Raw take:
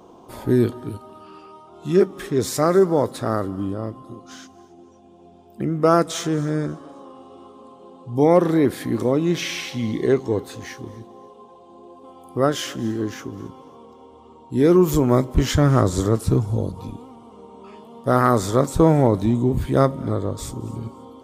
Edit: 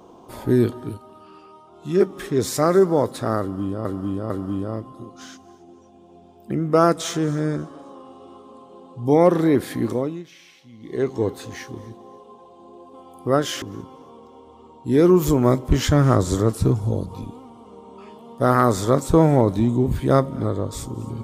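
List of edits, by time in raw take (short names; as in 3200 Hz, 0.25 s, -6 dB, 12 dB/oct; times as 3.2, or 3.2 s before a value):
0.94–2 gain -3 dB
3.4–3.85 loop, 3 plays
8.94–10.3 dip -21 dB, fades 0.40 s
12.72–13.28 cut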